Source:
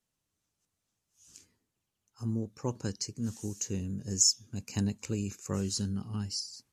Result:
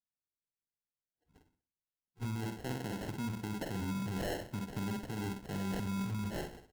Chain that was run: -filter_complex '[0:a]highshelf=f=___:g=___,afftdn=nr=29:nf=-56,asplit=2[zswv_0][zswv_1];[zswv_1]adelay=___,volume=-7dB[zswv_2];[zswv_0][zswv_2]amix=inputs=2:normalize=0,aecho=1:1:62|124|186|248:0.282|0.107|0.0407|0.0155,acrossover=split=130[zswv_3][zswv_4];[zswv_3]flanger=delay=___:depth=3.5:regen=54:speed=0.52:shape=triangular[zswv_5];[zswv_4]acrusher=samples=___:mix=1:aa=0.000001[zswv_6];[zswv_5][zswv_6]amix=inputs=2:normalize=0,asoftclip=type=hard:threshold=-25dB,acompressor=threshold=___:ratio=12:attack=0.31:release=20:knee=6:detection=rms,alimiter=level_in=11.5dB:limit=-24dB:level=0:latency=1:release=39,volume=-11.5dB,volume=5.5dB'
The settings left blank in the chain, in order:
2800, -10, 47, 0.4, 37, -36dB